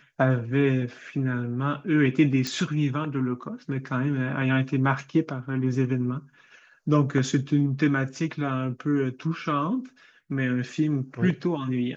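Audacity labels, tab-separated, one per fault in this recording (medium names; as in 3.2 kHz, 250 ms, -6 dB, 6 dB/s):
2.470000	2.470000	pop -14 dBFS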